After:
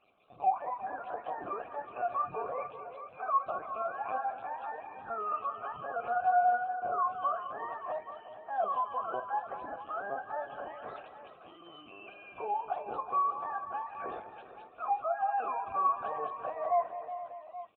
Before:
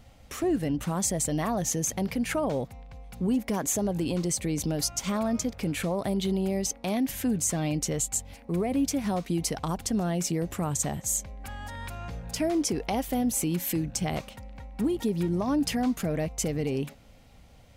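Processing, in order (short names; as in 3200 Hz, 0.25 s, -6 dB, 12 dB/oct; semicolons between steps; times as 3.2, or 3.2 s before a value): spectrum mirrored in octaves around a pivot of 530 Hz; LPC vocoder at 8 kHz pitch kept; vowel filter a; on a send: tapped delay 47/203/367/455/594/827 ms -14.5/-13.5/-12.5/-15/-18.5/-15 dB; on the sum: wow and flutter 22 cents; gain +6.5 dB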